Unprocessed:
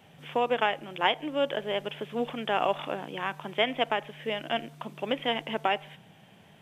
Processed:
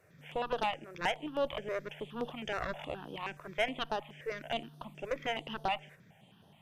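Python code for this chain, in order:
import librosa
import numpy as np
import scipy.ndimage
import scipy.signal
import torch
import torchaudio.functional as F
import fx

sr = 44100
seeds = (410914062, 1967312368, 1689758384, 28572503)

y = fx.tube_stage(x, sr, drive_db=20.0, bias=0.7)
y = fx.phaser_held(y, sr, hz=9.5, low_hz=850.0, high_hz=7500.0)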